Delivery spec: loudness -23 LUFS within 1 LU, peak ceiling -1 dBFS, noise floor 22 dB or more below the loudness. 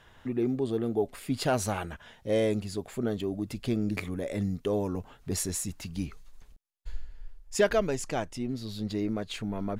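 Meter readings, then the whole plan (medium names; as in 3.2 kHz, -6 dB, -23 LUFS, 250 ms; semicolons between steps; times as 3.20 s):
loudness -31.5 LUFS; peak level -13.5 dBFS; loudness target -23.0 LUFS
-> trim +8.5 dB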